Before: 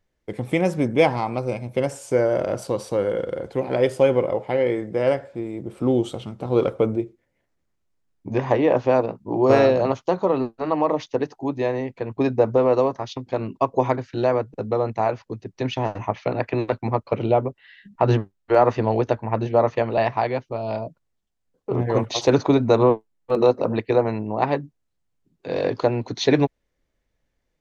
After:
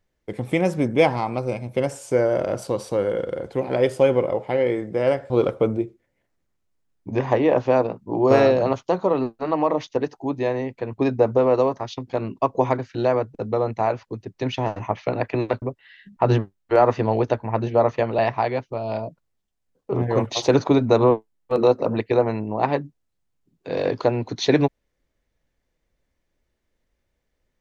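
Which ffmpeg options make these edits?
ffmpeg -i in.wav -filter_complex "[0:a]asplit=3[link_01][link_02][link_03];[link_01]atrim=end=5.302[link_04];[link_02]atrim=start=6.488:end=16.812[link_05];[link_03]atrim=start=17.408[link_06];[link_04][link_05]acrossfade=duration=0.004:curve1=hsin:curve2=hsin[link_07];[link_07][link_06]acrossfade=duration=0.004:curve1=hsin:curve2=hsin" out.wav

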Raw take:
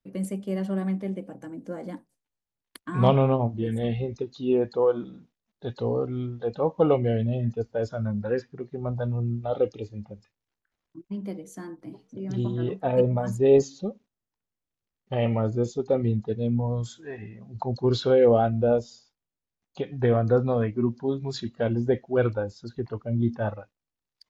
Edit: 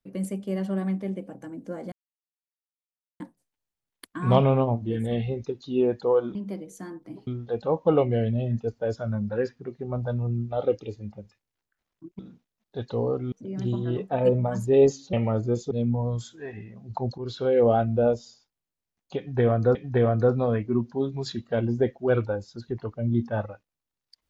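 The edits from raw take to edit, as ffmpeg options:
ffmpeg -i in.wav -filter_complex "[0:a]asplit=10[link_01][link_02][link_03][link_04][link_05][link_06][link_07][link_08][link_09][link_10];[link_01]atrim=end=1.92,asetpts=PTS-STARTPTS,afade=type=out:start_time=1.916:duration=0.004:curve=hsin,apad=pad_dur=1.28[link_11];[link_02]atrim=start=1.92:end=5.072,asetpts=PTS-STARTPTS,afade=type=in:duration=0.004:curve=hsin[link_12];[link_03]atrim=start=11.118:end=12.042[link_13];[link_04]atrim=start=6.198:end=11.122[link_14];[link_05]atrim=start=5.068:end=6.202[link_15];[link_06]atrim=start=12.038:end=13.852[link_16];[link_07]atrim=start=15.218:end=15.802[link_17];[link_08]atrim=start=16.358:end=17.83,asetpts=PTS-STARTPTS,afade=type=out:start_time=1.468:duration=0.004:curve=hsin:silence=0.177828[link_18];[link_09]atrim=start=17.83:end=20.402,asetpts=PTS-STARTPTS,afade=type=in:duration=0.56:silence=0.177828[link_19];[link_10]atrim=start=19.828[link_20];[link_11][link_12]concat=n=2:v=0:a=1[link_21];[link_21][link_13]acrossfade=duration=0.004:curve1=hsin:curve2=hsin[link_22];[link_22][link_14]acrossfade=duration=0.004:curve1=hsin:curve2=hsin[link_23];[link_23][link_15]acrossfade=duration=0.004:curve1=hsin:curve2=hsin[link_24];[link_24][link_16]acrossfade=duration=0.004:curve1=hsin:curve2=hsin[link_25];[link_25][link_17]acrossfade=duration=0.004:curve1=hsin:curve2=hsin[link_26];[link_18][link_19]concat=n=2:v=0:a=1[link_27];[link_26][link_27]acrossfade=duration=0.004:curve1=hsin:curve2=hsin[link_28];[link_28][link_20]acrossfade=duration=0.004:curve1=hsin:curve2=hsin" out.wav

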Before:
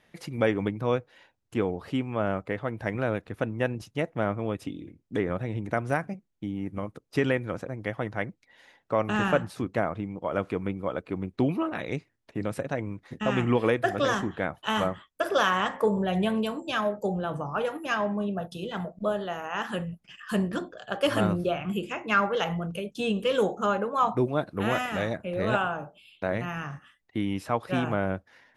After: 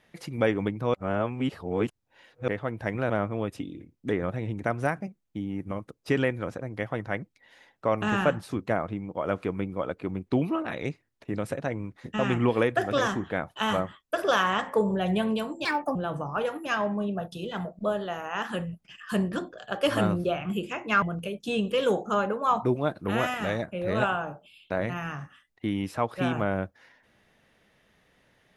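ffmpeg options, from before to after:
ffmpeg -i in.wav -filter_complex "[0:a]asplit=7[link_01][link_02][link_03][link_04][link_05][link_06][link_07];[link_01]atrim=end=0.942[link_08];[link_02]atrim=start=0.938:end=2.482,asetpts=PTS-STARTPTS,areverse[link_09];[link_03]atrim=start=2.478:end=3.102[link_10];[link_04]atrim=start=4.168:end=16.724[link_11];[link_05]atrim=start=16.72:end=17.15,asetpts=PTS-STARTPTS,asetrate=62622,aresample=44100,atrim=end_sample=13354,asetpts=PTS-STARTPTS[link_12];[link_06]atrim=start=17.146:end=22.222[link_13];[link_07]atrim=start=22.538[link_14];[link_08][link_09]acrossfade=duration=0.004:curve1=hsin:curve2=hsin[link_15];[link_15][link_10]acrossfade=duration=0.004:curve1=hsin:curve2=hsin[link_16];[link_16][link_11]acrossfade=duration=0.004:curve1=hsin:curve2=hsin[link_17];[link_17][link_12]acrossfade=duration=0.004:curve1=hsin:curve2=hsin[link_18];[link_18][link_13]acrossfade=duration=0.004:curve1=hsin:curve2=hsin[link_19];[link_19][link_14]acrossfade=duration=0.004:curve1=hsin:curve2=hsin" out.wav

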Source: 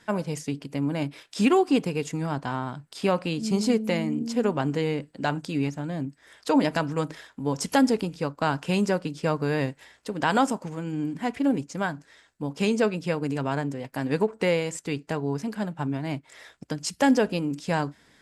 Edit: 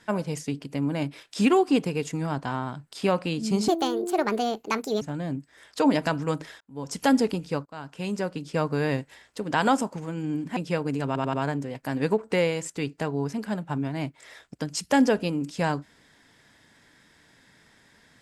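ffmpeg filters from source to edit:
ffmpeg -i in.wav -filter_complex "[0:a]asplit=9[link_01][link_02][link_03][link_04][link_05][link_06][link_07][link_08][link_09];[link_01]atrim=end=3.684[link_10];[link_02]atrim=start=3.68:end=5.71,asetpts=PTS-STARTPTS,asetrate=67032,aresample=44100[link_11];[link_03]atrim=start=5.706:end=7.3,asetpts=PTS-STARTPTS,afade=type=out:start_time=1.59:duration=0.004:curve=hsin[link_12];[link_04]atrim=start=7.3:end=8.35,asetpts=PTS-STARTPTS,afade=type=in:duration=0.52,afade=type=out:start_time=1.046:duration=0.004:curve=hsin:silence=0.0794328[link_13];[link_05]atrim=start=8.35:end=11.262,asetpts=PTS-STARTPTS,afade=type=in:duration=1.01:silence=0.0794328[link_14];[link_06]atrim=start=12.928:end=13.522[link_15];[link_07]atrim=start=13.428:end=13.522[link_16];[link_08]atrim=start=13.428:end=13.522[link_17];[link_09]atrim=start=13.428[link_18];[link_10][link_11]acrossfade=duration=0.004:curve1=hsin:curve2=hsin[link_19];[link_12][link_13][link_14]concat=n=3:v=0:a=1[link_20];[link_19][link_20]acrossfade=duration=0.004:curve1=hsin:curve2=hsin[link_21];[link_21][link_15]acrossfade=duration=0.004:curve1=hsin:curve2=hsin[link_22];[link_22][link_16]acrossfade=duration=0.004:curve1=hsin:curve2=hsin[link_23];[link_23][link_17]acrossfade=duration=0.004:curve1=hsin:curve2=hsin[link_24];[link_24][link_18]acrossfade=duration=0.004:curve1=hsin:curve2=hsin" out.wav

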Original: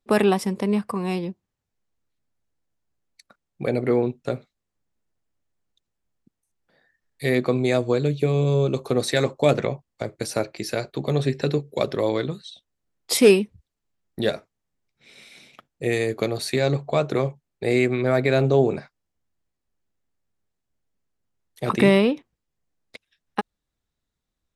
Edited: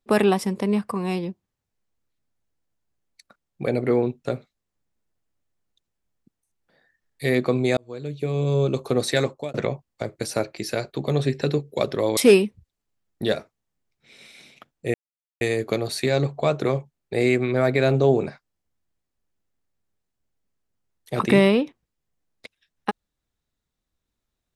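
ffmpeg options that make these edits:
ffmpeg -i in.wav -filter_complex "[0:a]asplit=5[link_01][link_02][link_03][link_04][link_05];[link_01]atrim=end=7.77,asetpts=PTS-STARTPTS,afade=type=out:start_time=7.766:duration=0.004:curve=hsin[link_06];[link_02]atrim=start=7.77:end=9.54,asetpts=PTS-STARTPTS,afade=type=in:duration=0.87,afade=type=out:start_time=1.42:duration=0.35[link_07];[link_03]atrim=start=9.54:end=12.172,asetpts=PTS-STARTPTS,afade=type=in:duration=0.004:curve=hsin[link_08];[link_04]atrim=start=13.138:end=15.91,asetpts=PTS-STARTPTS,afade=type=out:start_time=2.768:duration=0.004:curve=hsin,apad=pad_dur=0.47[link_09];[link_05]atrim=start=15.91,asetpts=PTS-STARTPTS,afade=type=in:duration=0.004:curve=hsin[link_10];[link_06][link_07][link_08]concat=n=3:v=0:a=1[link_11];[link_09][link_10]concat=n=2:v=0:a=1[link_12];[link_11][link_12]acrossfade=duration=0.004:curve1=hsin:curve2=hsin" out.wav

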